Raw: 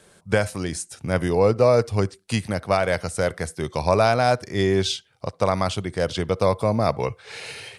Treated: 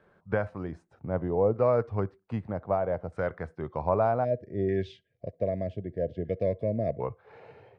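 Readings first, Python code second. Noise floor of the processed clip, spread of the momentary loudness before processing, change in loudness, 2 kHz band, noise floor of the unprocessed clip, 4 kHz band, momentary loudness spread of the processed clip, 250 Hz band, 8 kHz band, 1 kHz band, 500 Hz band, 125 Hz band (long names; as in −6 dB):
−70 dBFS, 11 LU, −7.5 dB, −14.0 dB, −58 dBFS, below −25 dB, 13 LU, −7.5 dB, below −35 dB, −8.5 dB, −6.5 dB, −8.0 dB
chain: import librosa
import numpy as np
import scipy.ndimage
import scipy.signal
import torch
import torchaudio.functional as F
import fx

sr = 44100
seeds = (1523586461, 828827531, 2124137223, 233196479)

y = fx.filter_lfo_lowpass(x, sr, shape='saw_down', hz=0.64, low_hz=710.0, high_hz=1500.0, q=1.2)
y = fx.spec_box(y, sr, start_s=4.24, length_s=2.77, low_hz=710.0, high_hz=1600.0, gain_db=-28)
y = y * 10.0 ** (-8.0 / 20.0)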